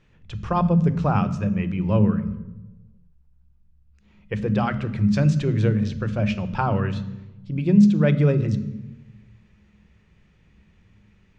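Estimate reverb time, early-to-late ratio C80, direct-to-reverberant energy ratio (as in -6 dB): 1.1 s, 16.0 dB, 11.0 dB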